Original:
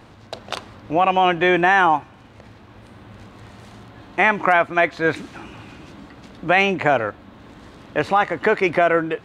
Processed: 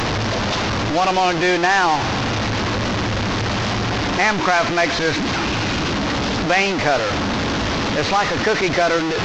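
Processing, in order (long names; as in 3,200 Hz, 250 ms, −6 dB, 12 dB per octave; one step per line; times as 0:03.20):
linear delta modulator 32 kbit/s, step −13.5 dBFS
level −1 dB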